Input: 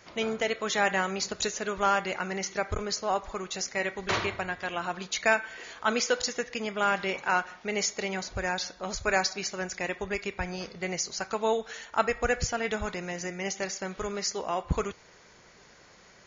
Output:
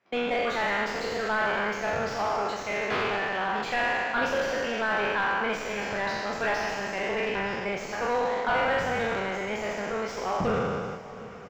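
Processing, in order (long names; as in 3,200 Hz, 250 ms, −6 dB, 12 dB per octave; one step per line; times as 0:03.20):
peak hold with a decay on every bin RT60 2.47 s
noise gate with hold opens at −25 dBFS
high-pass filter 160 Hz 12 dB per octave
parametric band 6,300 Hz +10 dB 0.68 octaves
in parallel at −12 dB: asymmetric clip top −21 dBFS
on the sum: tempo change 1.3×
soft clipping −21.5 dBFS, distortion −9 dB
high-frequency loss of the air 440 metres
feedback delay with all-pass diffusion 783 ms, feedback 55%, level −15.5 dB
wrong playback speed 44.1 kHz file played as 48 kHz
every ending faded ahead of time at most 120 dB per second
level +2.5 dB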